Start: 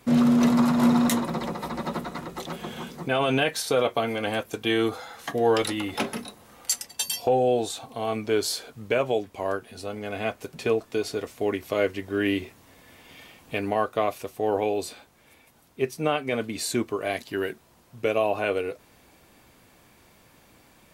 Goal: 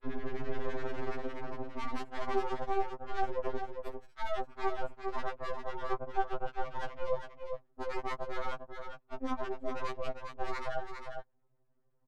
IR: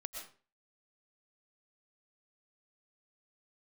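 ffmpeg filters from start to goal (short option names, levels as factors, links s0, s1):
-filter_complex "[0:a]afwtdn=0.0224,equalizer=f=3400:w=0.52:g=-13.5,areverse,acompressor=threshold=0.0355:ratio=12,areverse,aeval=exprs='max(val(0),0)':c=same,adynamicsmooth=sensitivity=4:basefreq=650,acrossover=split=710[s0][s1];[s0]aeval=exprs='val(0)*(1-1/2+1/2*cos(2*PI*6.8*n/s))':c=same[s2];[s1]aeval=exprs='val(0)*(1-1/2-1/2*cos(2*PI*6.8*n/s))':c=same[s3];[s2][s3]amix=inputs=2:normalize=0,aecho=1:1:699:0.473,asetrate=76440,aresample=44100,afftfilt=real='re*2.45*eq(mod(b,6),0)':imag='im*2.45*eq(mod(b,6),0)':win_size=2048:overlap=0.75,volume=2.37"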